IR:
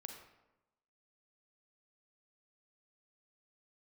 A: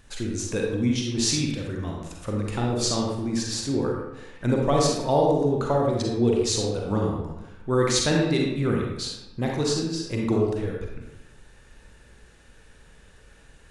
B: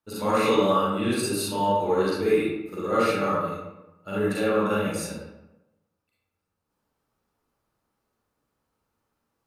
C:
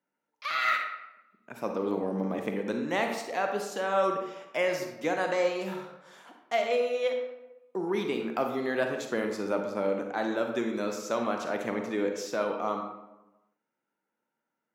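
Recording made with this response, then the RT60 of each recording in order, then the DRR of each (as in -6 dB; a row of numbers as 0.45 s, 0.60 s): C; 1.0 s, 1.0 s, 1.0 s; -1.5 dB, -9.0 dB, 3.5 dB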